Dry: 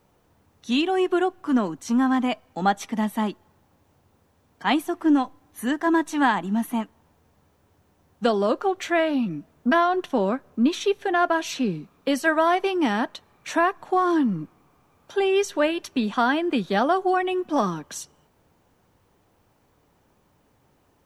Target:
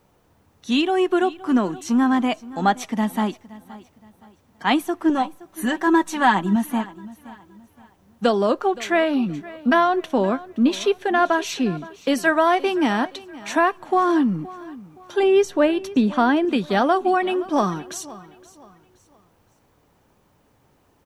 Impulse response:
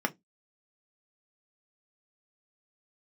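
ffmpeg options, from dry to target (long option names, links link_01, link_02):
-filter_complex "[0:a]asettb=1/sr,asplit=3[link_01][link_02][link_03];[link_01]atrim=end=5.094[link_04];[link_02]atrim=start=5.09:end=6.56,asetpts=PTS-STARTPTS,afade=type=in:duration=0.004:curve=qsin,afade=type=out:start_time=1.466:duration=0.004:curve=qsin,aecho=1:1:5.3:0.65,atrim=end_sample=64827[link_05];[link_03]atrim=start=6.556[link_06];[link_04][link_05]acrossfade=duration=0.004:curve1=hsin:curve2=qsin[link_07];[link_07][link_06]acrossfade=duration=0.004:curve1=qsin:curve2=hsin,asettb=1/sr,asplit=3[link_08][link_09][link_10];[link_08]atrim=end=15.234[link_11];[link_09]atrim=start=15.23:end=16.45,asetpts=PTS-STARTPTS,afade=type=in:duration=0.004:curve=qsin,afade=type=out:start_time=1.216:duration=0.004:curve=qsin,tiltshelf=frequency=830:gain=4.5[link_12];[link_10]atrim=start=16.446[link_13];[link_11][link_12]acrossfade=duration=0.004:curve1=hsin:curve2=qsin[link_14];[link_14][link_13]acrossfade=duration=0.004:curve1=qsin:curve2=hsin,asplit=2[link_15][link_16];[link_16]aecho=0:1:520|1040|1560:0.112|0.0381|0.013[link_17];[link_15][link_17]amix=inputs=2:normalize=0,volume=2.5dB"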